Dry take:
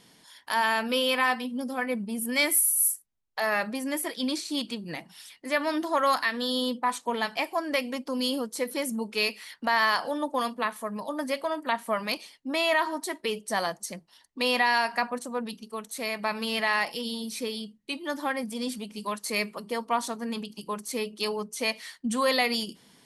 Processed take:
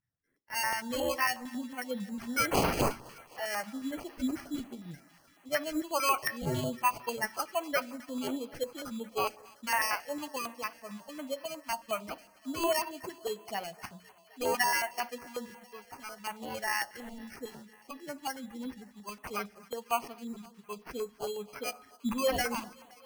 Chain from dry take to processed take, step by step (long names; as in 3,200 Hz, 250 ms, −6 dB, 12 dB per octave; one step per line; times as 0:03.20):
spectral dynamics exaggerated over time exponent 2
0:06.46–0:07.83: parametric band 2,600 Hz +7.5 dB 2 octaves
decimation without filtering 12×
feedback echo with a high-pass in the loop 260 ms, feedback 83%, high-pass 330 Hz, level −23 dB
on a send at −16 dB: convolution reverb RT60 0.65 s, pre-delay 4 ms
on the sum: notch on a step sequencer 11 Hz 490–7,500 Hz